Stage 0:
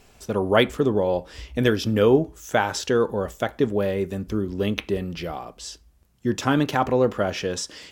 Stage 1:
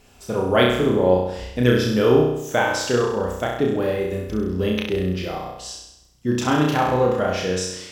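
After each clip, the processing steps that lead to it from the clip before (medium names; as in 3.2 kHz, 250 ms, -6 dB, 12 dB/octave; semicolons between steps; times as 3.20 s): flutter echo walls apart 5.6 m, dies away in 0.83 s; trim -1 dB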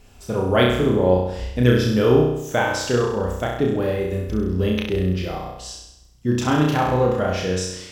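bass shelf 110 Hz +10 dB; trim -1 dB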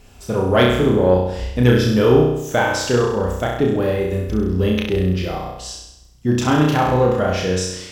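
single-diode clipper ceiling -2.5 dBFS; trim +3.5 dB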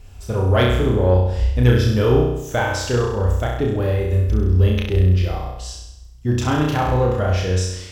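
resonant low shelf 120 Hz +9.5 dB, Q 1.5; trim -3 dB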